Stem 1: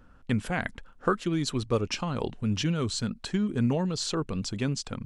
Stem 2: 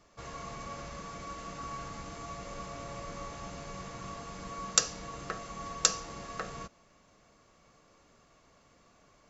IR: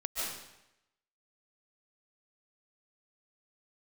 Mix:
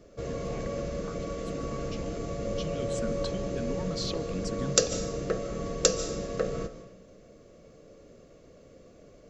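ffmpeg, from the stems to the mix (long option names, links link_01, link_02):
-filter_complex "[0:a]equalizer=frequency=9300:width=2.8:gain=-10,acompressor=threshold=-29dB:ratio=6,asplit=2[link_01][link_02];[link_02]afreqshift=-1.4[link_03];[link_01][link_03]amix=inputs=2:normalize=1,volume=-0.5dB,afade=type=in:start_time=2.46:duration=0.33:silence=0.298538,asplit=2[link_04][link_05];[link_05]volume=-23.5dB[link_06];[1:a]lowshelf=frequency=680:width_type=q:width=3:gain=9,volume=-0.5dB,asplit=2[link_07][link_08];[link_08]volume=-13.5dB[link_09];[2:a]atrim=start_sample=2205[link_10];[link_06][link_09]amix=inputs=2:normalize=0[link_11];[link_11][link_10]afir=irnorm=-1:irlink=0[link_12];[link_04][link_07][link_12]amix=inputs=3:normalize=0"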